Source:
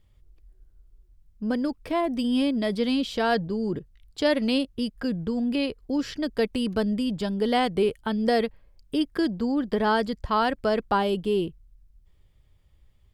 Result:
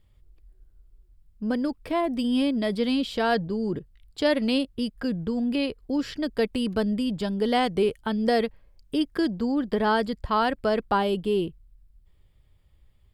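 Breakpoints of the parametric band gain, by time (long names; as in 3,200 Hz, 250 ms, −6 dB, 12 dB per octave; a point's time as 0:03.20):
parametric band 6,100 Hz 0.26 octaves
0:07.12 −5.5 dB
0:07.76 +5.5 dB
0:08.02 −1 dB
0:09.45 −1 dB
0:09.98 −8 dB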